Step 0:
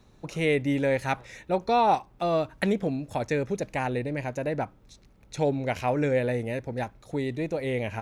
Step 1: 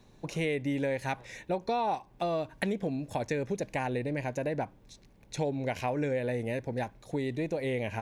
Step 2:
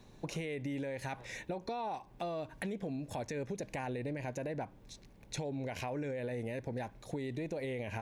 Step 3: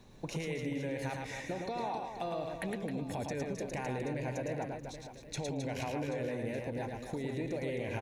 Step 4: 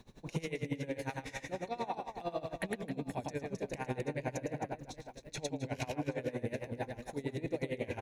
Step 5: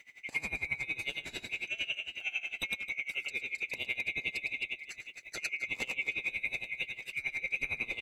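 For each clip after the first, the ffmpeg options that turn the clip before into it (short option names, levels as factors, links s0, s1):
-af "acompressor=threshold=0.0398:ratio=4,equalizer=f=60:t=o:w=0.83:g=-7,bandreject=f=1300:w=6.6"
-af "alimiter=level_in=1.33:limit=0.0631:level=0:latency=1:release=20,volume=0.75,acompressor=threshold=0.0141:ratio=4,volume=1.12"
-af "aecho=1:1:110|264|479.6|781.4|1204:0.631|0.398|0.251|0.158|0.1"
-af "aeval=exprs='val(0)*pow(10,-20*(0.5-0.5*cos(2*PI*11*n/s))/20)':c=same,volume=1.58"
-af "afftfilt=real='real(if(lt(b,920),b+92*(1-2*mod(floor(b/92),2)),b),0)':imag='imag(if(lt(b,920),b+92*(1-2*mod(floor(b/92),2)),b),0)':win_size=2048:overlap=0.75,volume=1.19"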